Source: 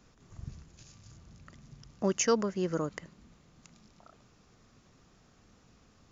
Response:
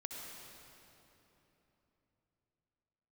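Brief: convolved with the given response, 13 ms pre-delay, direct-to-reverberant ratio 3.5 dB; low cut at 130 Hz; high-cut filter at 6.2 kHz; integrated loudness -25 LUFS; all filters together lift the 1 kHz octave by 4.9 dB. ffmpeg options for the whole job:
-filter_complex "[0:a]highpass=130,lowpass=6200,equalizer=f=1000:t=o:g=6,asplit=2[s0][s1];[1:a]atrim=start_sample=2205,adelay=13[s2];[s1][s2]afir=irnorm=-1:irlink=0,volume=0.794[s3];[s0][s3]amix=inputs=2:normalize=0,volume=1.58"

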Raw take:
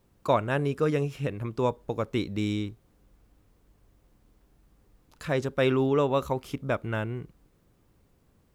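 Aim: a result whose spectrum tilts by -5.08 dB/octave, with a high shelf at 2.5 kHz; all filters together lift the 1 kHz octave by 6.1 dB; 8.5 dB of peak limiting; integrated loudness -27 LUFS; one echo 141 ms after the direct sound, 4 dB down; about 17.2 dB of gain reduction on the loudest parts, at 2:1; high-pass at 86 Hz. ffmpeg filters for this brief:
-af "highpass=86,equalizer=f=1000:t=o:g=6,highshelf=f=2500:g=7.5,acompressor=threshold=0.00447:ratio=2,alimiter=level_in=2:limit=0.0631:level=0:latency=1,volume=0.501,aecho=1:1:141:0.631,volume=5.31"

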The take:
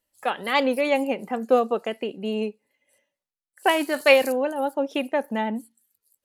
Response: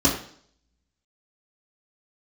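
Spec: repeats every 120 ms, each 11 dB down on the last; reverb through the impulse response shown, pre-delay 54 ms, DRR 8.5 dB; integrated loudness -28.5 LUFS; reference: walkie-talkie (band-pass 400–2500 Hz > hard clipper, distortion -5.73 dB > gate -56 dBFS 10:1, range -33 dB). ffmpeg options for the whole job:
-filter_complex "[0:a]aecho=1:1:120|240|360:0.282|0.0789|0.0221,asplit=2[s0][s1];[1:a]atrim=start_sample=2205,adelay=54[s2];[s1][s2]afir=irnorm=-1:irlink=0,volume=0.0596[s3];[s0][s3]amix=inputs=2:normalize=0,highpass=400,lowpass=2500,asoftclip=type=hard:threshold=0.0631,agate=range=0.0224:threshold=0.00158:ratio=10"

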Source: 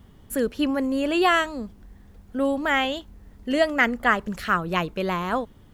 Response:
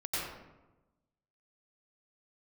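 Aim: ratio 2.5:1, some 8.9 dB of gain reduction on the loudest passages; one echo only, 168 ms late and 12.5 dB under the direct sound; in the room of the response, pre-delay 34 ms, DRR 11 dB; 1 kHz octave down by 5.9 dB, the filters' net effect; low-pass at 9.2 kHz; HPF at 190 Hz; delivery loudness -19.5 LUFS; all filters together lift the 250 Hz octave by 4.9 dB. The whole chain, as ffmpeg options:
-filter_complex "[0:a]highpass=190,lowpass=9200,equalizer=f=250:t=o:g=7.5,equalizer=f=1000:t=o:g=-9,acompressor=threshold=0.0316:ratio=2.5,aecho=1:1:168:0.237,asplit=2[s0][s1];[1:a]atrim=start_sample=2205,adelay=34[s2];[s1][s2]afir=irnorm=-1:irlink=0,volume=0.15[s3];[s0][s3]amix=inputs=2:normalize=0,volume=3.55"

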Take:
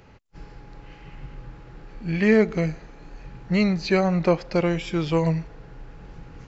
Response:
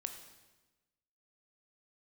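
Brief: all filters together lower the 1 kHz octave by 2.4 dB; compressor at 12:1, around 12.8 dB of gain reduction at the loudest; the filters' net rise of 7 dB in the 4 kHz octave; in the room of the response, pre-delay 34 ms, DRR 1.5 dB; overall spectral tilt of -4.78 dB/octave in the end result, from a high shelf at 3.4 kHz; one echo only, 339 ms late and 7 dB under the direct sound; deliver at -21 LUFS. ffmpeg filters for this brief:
-filter_complex "[0:a]equalizer=f=1000:t=o:g=-4,highshelf=f=3400:g=5,equalizer=f=4000:t=o:g=5,acompressor=threshold=0.0501:ratio=12,aecho=1:1:339:0.447,asplit=2[s0][s1];[1:a]atrim=start_sample=2205,adelay=34[s2];[s1][s2]afir=irnorm=-1:irlink=0,volume=1.06[s3];[s0][s3]amix=inputs=2:normalize=0,volume=2.66"

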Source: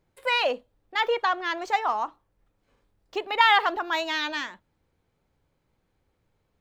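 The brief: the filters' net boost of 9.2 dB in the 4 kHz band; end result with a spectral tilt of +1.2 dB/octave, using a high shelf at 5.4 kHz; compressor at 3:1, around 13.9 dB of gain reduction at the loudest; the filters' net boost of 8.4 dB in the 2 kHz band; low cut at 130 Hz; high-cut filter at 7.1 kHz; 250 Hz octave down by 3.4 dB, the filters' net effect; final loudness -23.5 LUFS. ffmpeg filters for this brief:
-af "highpass=130,lowpass=7100,equalizer=f=250:t=o:g=-5.5,equalizer=f=2000:t=o:g=7.5,equalizer=f=4000:t=o:g=6,highshelf=f=5400:g=9,acompressor=threshold=0.0447:ratio=3,volume=1.78"

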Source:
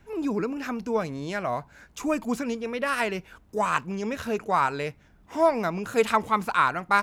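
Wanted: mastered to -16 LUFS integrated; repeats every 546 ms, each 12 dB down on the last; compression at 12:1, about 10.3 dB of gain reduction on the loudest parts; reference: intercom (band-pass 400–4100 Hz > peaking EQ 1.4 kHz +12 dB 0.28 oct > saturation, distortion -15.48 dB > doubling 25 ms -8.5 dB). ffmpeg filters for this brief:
-filter_complex "[0:a]acompressor=threshold=0.0501:ratio=12,highpass=400,lowpass=4100,equalizer=f=1400:t=o:w=0.28:g=12,aecho=1:1:546|1092|1638:0.251|0.0628|0.0157,asoftclip=threshold=0.112,asplit=2[s0][s1];[s1]adelay=25,volume=0.376[s2];[s0][s2]amix=inputs=2:normalize=0,volume=5.62"

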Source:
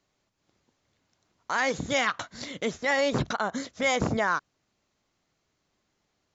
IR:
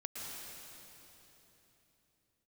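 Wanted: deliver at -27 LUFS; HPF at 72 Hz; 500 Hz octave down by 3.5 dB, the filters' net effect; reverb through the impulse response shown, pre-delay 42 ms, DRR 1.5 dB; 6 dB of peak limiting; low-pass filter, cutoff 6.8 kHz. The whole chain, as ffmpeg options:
-filter_complex "[0:a]highpass=72,lowpass=6800,equalizer=f=500:t=o:g=-4,alimiter=limit=0.0944:level=0:latency=1,asplit=2[s0][s1];[1:a]atrim=start_sample=2205,adelay=42[s2];[s1][s2]afir=irnorm=-1:irlink=0,volume=0.841[s3];[s0][s3]amix=inputs=2:normalize=0,volume=1.41"

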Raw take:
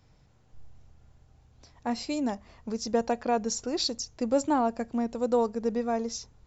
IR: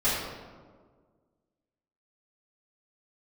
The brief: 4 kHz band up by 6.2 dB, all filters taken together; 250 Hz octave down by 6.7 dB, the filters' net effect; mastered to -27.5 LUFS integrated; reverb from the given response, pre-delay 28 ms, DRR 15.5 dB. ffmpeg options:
-filter_complex "[0:a]equalizer=f=250:t=o:g=-7.5,equalizer=f=4000:t=o:g=7.5,asplit=2[s0][s1];[1:a]atrim=start_sample=2205,adelay=28[s2];[s1][s2]afir=irnorm=-1:irlink=0,volume=0.0376[s3];[s0][s3]amix=inputs=2:normalize=0,volume=1.26"

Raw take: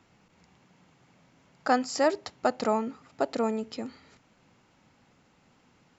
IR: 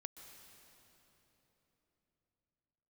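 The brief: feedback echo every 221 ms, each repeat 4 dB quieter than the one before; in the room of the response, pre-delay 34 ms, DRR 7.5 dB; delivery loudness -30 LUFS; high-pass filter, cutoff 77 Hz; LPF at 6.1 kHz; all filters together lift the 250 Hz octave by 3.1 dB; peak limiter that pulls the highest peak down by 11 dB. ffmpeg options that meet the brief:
-filter_complex "[0:a]highpass=77,lowpass=6100,equalizer=f=250:t=o:g=3.5,alimiter=limit=0.106:level=0:latency=1,aecho=1:1:221|442|663|884|1105|1326|1547|1768|1989:0.631|0.398|0.25|0.158|0.0994|0.0626|0.0394|0.0249|0.0157,asplit=2[s0][s1];[1:a]atrim=start_sample=2205,adelay=34[s2];[s1][s2]afir=irnorm=-1:irlink=0,volume=0.75[s3];[s0][s3]amix=inputs=2:normalize=0,volume=1.12"

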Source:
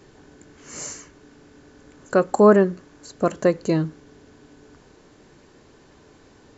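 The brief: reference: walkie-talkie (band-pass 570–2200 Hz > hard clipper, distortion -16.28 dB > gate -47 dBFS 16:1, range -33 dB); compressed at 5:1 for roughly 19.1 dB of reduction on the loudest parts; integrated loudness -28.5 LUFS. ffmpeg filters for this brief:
-af "acompressor=threshold=0.0282:ratio=5,highpass=570,lowpass=2200,asoftclip=type=hard:threshold=0.0355,agate=range=0.0224:threshold=0.00447:ratio=16,volume=4.73"

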